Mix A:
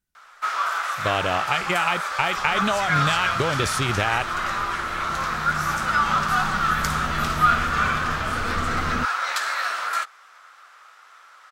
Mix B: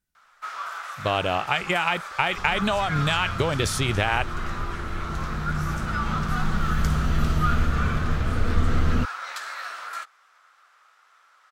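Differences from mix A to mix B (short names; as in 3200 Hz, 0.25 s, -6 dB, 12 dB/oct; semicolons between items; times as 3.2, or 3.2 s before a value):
first sound -9.0 dB; second sound: add low shelf 130 Hz +11.5 dB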